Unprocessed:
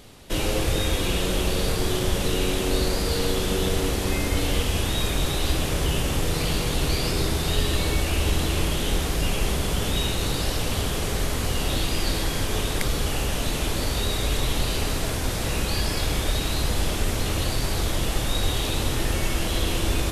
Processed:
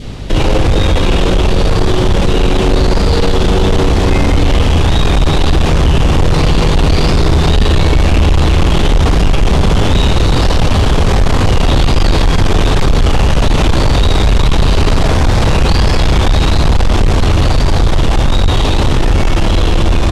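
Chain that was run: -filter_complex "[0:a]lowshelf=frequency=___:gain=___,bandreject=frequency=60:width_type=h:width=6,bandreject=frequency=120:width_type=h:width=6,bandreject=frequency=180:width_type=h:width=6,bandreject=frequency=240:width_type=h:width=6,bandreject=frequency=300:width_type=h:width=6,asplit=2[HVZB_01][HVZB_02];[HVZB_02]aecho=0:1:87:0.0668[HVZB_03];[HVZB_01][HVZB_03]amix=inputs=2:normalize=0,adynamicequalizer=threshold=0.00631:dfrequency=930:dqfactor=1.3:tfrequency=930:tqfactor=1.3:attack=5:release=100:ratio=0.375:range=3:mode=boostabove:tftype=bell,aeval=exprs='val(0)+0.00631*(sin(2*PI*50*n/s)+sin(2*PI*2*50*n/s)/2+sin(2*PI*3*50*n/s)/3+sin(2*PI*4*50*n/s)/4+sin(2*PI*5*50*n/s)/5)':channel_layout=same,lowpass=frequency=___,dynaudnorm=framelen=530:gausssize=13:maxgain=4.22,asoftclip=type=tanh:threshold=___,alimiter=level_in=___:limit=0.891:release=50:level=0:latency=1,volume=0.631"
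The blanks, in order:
280, 9.5, 5700, 0.188, 10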